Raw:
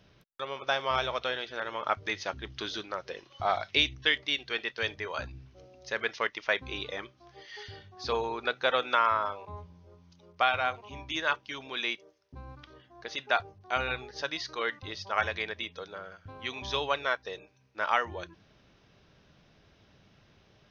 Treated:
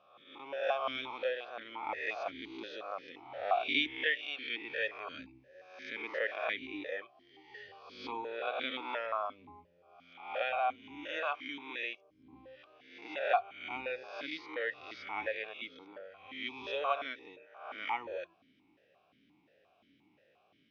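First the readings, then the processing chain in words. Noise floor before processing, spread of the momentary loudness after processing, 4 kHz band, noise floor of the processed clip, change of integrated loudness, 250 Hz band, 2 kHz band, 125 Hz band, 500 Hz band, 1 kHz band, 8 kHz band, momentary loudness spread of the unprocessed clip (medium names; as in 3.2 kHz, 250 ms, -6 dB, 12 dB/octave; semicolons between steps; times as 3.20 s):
-63 dBFS, 18 LU, -8.5 dB, -70 dBFS, -6.0 dB, -3.0 dB, -5.5 dB, under -15 dB, -3.5 dB, -6.0 dB, no reading, 18 LU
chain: reverse spectral sustain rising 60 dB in 0.80 s; stepped vowel filter 5.7 Hz; trim +3.5 dB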